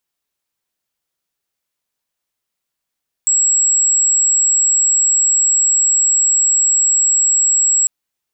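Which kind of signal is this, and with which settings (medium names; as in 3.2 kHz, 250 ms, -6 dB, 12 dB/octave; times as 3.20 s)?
tone sine 7.68 kHz -10.5 dBFS 4.60 s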